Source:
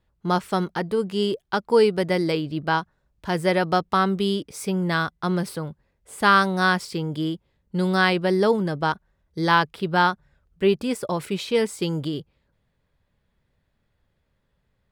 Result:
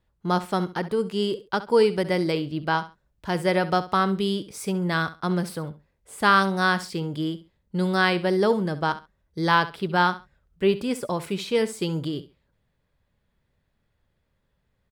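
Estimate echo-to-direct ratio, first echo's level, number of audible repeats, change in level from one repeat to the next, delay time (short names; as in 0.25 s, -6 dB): -15.0 dB, -15.0 dB, 2, -13.5 dB, 67 ms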